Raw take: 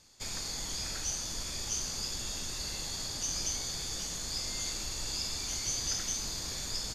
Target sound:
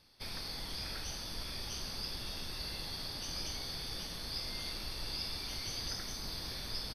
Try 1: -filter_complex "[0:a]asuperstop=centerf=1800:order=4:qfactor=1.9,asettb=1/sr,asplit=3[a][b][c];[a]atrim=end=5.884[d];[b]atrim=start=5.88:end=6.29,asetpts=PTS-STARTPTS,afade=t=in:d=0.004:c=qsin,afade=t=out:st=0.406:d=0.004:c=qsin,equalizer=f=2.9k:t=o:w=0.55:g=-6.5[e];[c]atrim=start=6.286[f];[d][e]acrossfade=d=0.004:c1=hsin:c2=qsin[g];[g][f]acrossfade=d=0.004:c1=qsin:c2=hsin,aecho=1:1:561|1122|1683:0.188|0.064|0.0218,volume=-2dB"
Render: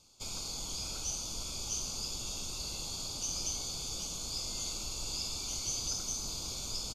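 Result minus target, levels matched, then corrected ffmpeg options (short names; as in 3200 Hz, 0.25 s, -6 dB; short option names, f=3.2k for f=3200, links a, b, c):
8000 Hz band +9.0 dB
-filter_complex "[0:a]asuperstop=centerf=7100:order=4:qfactor=1.9,asettb=1/sr,asplit=3[a][b][c];[a]atrim=end=5.884[d];[b]atrim=start=5.88:end=6.29,asetpts=PTS-STARTPTS,afade=t=in:d=0.004:c=qsin,afade=t=out:st=0.406:d=0.004:c=qsin,equalizer=f=2.9k:t=o:w=0.55:g=-6.5[e];[c]atrim=start=6.286[f];[d][e]acrossfade=d=0.004:c1=hsin:c2=qsin[g];[g][f]acrossfade=d=0.004:c1=qsin:c2=hsin,aecho=1:1:561|1122|1683:0.188|0.064|0.0218,volume=-2dB"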